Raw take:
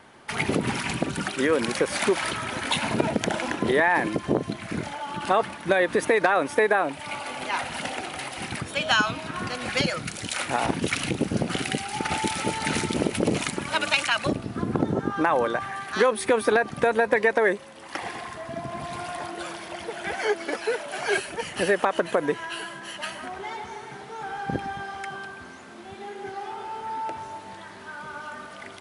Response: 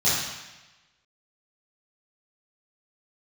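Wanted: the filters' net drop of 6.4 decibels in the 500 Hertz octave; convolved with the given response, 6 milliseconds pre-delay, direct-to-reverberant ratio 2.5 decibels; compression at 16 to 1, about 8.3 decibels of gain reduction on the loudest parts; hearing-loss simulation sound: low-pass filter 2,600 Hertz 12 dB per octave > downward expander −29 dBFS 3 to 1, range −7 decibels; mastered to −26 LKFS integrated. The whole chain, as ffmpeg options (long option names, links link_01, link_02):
-filter_complex "[0:a]equalizer=frequency=500:width_type=o:gain=-8,acompressor=threshold=-27dB:ratio=16,asplit=2[link_01][link_02];[1:a]atrim=start_sample=2205,adelay=6[link_03];[link_02][link_03]afir=irnorm=-1:irlink=0,volume=-17.5dB[link_04];[link_01][link_04]amix=inputs=2:normalize=0,lowpass=2600,agate=range=-7dB:threshold=-29dB:ratio=3,volume=6.5dB"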